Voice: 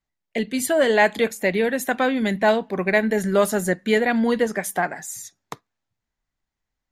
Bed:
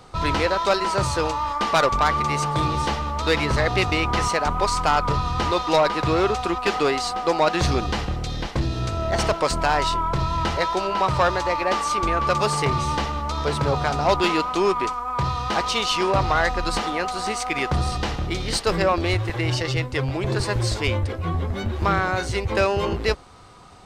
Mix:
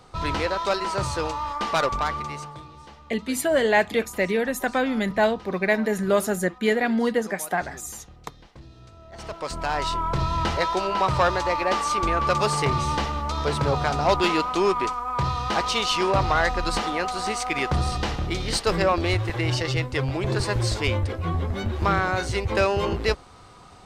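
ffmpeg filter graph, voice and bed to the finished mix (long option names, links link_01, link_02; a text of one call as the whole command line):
ffmpeg -i stem1.wav -i stem2.wav -filter_complex "[0:a]adelay=2750,volume=-2.5dB[link_01];[1:a]volume=17dB,afade=type=out:start_time=1.86:duration=0.78:silence=0.125893,afade=type=in:start_time=9.12:duration=1.1:silence=0.0891251[link_02];[link_01][link_02]amix=inputs=2:normalize=0" out.wav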